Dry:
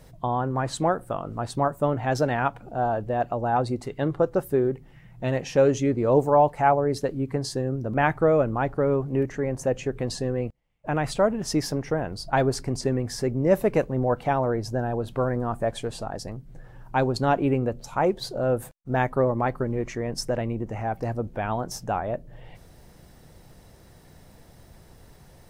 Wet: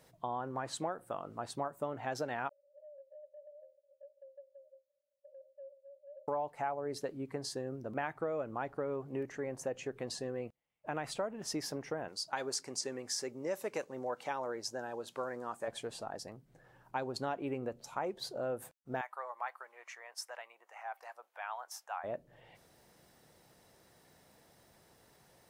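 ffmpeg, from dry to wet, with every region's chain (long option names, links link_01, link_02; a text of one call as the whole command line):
ffmpeg -i in.wav -filter_complex "[0:a]asettb=1/sr,asplit=3[link_01][link_02][link_03];[link_01]atrim=end=2.494[link_04];[link_02]atrim=start=2.49:end=6.28,asetpts=PTS-STARTPTS,afade=type=in:duration=0.004:curve=qsin,afade=type=out:start_time=3.786:duration=0.004:curve=qsin,asuperpass=centerf=570:order=20:qfactor=7.1,acompressor=threshold=-43dB:ratio=4:attack=3.2:release=140:knee=1:detection=peak[link_05];[link_03]atrim=start=6.276[link_06];[link_04][link_05]acrossfade=duration=0.004:curve1=hsin:curve2=qsin[link_07];[link_07][link_06]acrossfade=duration=0.004:curve1=qsin:curve2=hsin,asettb=1/sr,asplit=3[link_08][link_09][link_10];[link_08]atrim=end=12.084[link_11];[link_09]atrim=start=12.08:end=15.68,asetpts=PTS-STARTPTS,afade=type=in:duration=0.004:curve=qsin,afade=type=out:start_time=3.596:duration=0.004:curve=qsin,highpass=frequency=400:poles=1,equalizer=frequency=6500:width_type=o:width=1.3:gain=9.5,bandreject=frequency=690:width=9.6[link_12];[link_10]atrim=start=15.676[link_13];[link_11][link_12]acrossfade=duration=0.004:curve1=hsin:curve2=qsin[link_14];[link_14][link_13]acrossfade=duration=0.004:curve1=qsin:curve2=hsin,asettb=1/sr,asplit=3[link_15][link_16][link_17];[link_15]atrim=end=19.014[link_18];[link_16]atrim=start=19.01:end=22.04,asetpts=PTS-STARTPTS,afade=type=in:duration=0.004:curve=qsin,afade=type=out:start_time=3.026:duration=0.004:curve=qsin,highpass=frequency=840:width=0.5412,highpass=frequency=840:width=1.3066,equalizer=frequency=5500:width_type=o:width=1.5:gain=-4[link_19];[link_17]atrim=start=22.036[link_20];[link_18][link_19]acrossfade=duration=0.004:curve1=hsin:curve2=qsin[link_21];[link_21][link_20]acrossfade=duration=0.004:curve1=qsin:curve2=hsin,highpass=frequency=410:poles=1,acompressor=threshold=-25dB:ratio=6,volume=-7.5dB" out.wav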